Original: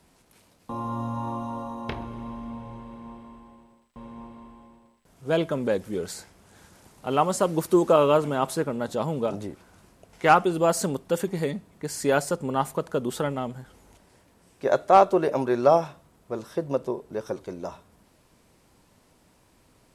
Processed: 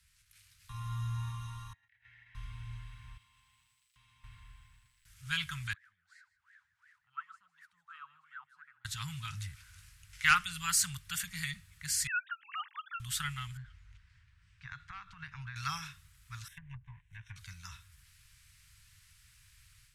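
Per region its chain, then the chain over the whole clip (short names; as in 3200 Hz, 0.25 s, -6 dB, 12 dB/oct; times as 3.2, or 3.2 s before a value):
1.73–2.35 double band-pass 1100 Hz, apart 1.5 oct + negative-ratio compressor -53 dBFS, ratio -0.5
3.17–4.24 HPF 470 Hz 6 dB/oct + bell 1600 Hz -8 dB 0.78 oct + compressor 3:1, threshold -51 dBFS
5.73–8.85 wah 2.8 Hz 500–1900 Hz, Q 19 + upward compressor, threshold -53 dBFS + echo 0.156 s -17.5 dB
12.07–13 sine-wave speech + HPF 240 Hz 24 dB/oct + three-band squash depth 70%
13.57–15.56 compressor 8:1, threshold -23 dBFS + tape spacing loss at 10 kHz 28 dB
16.48–17.36 G.711 law mismatch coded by A + treble ducked by the level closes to 490 Hz, closed at -21.5 dBFS + fixed phaser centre 1300 Hz, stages 6
whole clip: inverse Chebyshev band-stop 290–610 Hz, stop band 70 dB; AGC gain up to 7.5 dB; gain -4.5 dB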